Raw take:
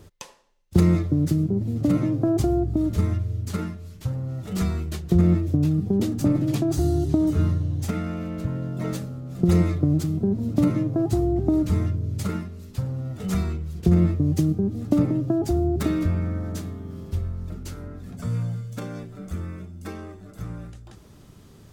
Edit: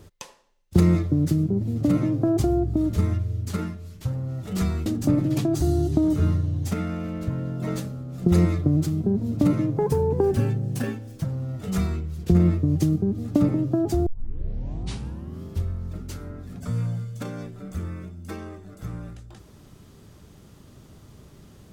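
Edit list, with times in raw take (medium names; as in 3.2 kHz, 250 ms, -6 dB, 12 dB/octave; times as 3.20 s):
4.86–6.03 s: delete
10.95–12.81 s: speed 127%
15.63 s: tape start 1.36 s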